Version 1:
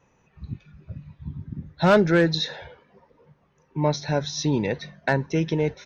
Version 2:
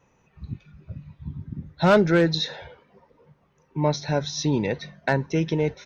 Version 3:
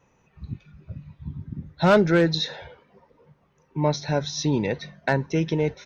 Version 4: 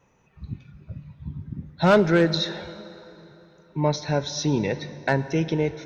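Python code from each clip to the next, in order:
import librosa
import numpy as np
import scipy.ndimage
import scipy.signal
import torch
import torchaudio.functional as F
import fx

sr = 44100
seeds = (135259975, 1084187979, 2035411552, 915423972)

y1 = fx.notch(x, sr, hz=1700.0, q=27.0)
y2 = y1
y3 = fx.rev_plate(y2, sr, seeds[0], rt60_s=3.4, hf_ratio=0.75, predelay_ms=0, drr_db=13.5)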